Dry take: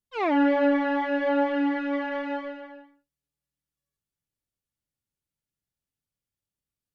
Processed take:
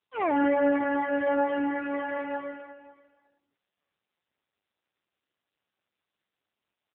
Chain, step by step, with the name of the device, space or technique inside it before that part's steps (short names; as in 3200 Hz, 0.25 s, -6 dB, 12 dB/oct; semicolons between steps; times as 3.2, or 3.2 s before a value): 0.43–1.37 dynamic EQ 330 Hz, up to +5 dB, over -42 dBFS, Q 5.3; 2.17–2.74 HPF 260 Hz -> 78 Hz 24 dB/oct; satellite phone (BPF 320–3300 Hz; echo 0.543 s -20.5 dB; AMR-NB 6.7 kbps 8000 Hz)